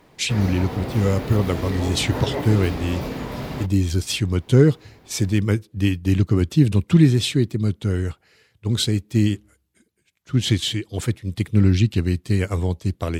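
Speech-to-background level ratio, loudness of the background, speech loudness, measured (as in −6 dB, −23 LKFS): 8.5 dB, −29.5 LKFS, −21.0 LKFS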